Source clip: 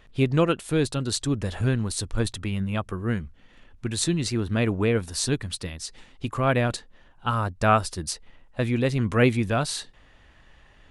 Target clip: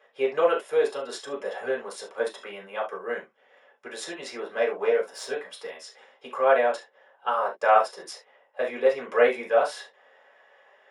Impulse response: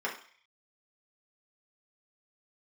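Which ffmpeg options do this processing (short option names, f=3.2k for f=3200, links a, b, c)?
-filter_complex "[0:a]asettb=1/sr,asplit=3[a][b][c];[a]atrim=end=4.524[d];[b]atrim=start=4.52:end=5.5,asetpts=PTS-STARTPTS,afade=t=in:d=0.004:c=qsin,afade=t=out:st=0.976:d=0.004:c=qsin,aeval=exprs='if(lt(val(0),0),0.708*val(0),val(0))':c=same[e];[c]atrim=start=5.496[f];[d][e]acrossfade=d=0.004:c1=hsin:c2=qsin[g];[g][f]acrossfade=d=0.004:c1=qsin:c2=hsin,highpass=f=580:t=q:w=3.4[h];[1:a]atrim=start_sample=2205,afade=t=out:st=0.13:d=0.01,atrim=end_sample=6174[i];[h][i]afir=irnorm=-1:irlink=0,volume=-8dB"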